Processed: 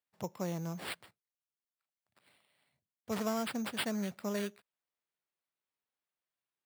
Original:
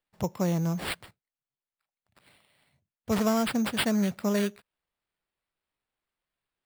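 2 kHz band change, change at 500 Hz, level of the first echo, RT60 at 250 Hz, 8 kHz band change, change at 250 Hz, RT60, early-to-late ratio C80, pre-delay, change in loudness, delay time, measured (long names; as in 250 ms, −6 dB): −7.5 dB, −8.0 dB, no echo audible, no reverb audible, −7.5 dB, −10.5 dB, no reverb audible, no reverb audible, no reverb audible, −9.5 dB, no echo audible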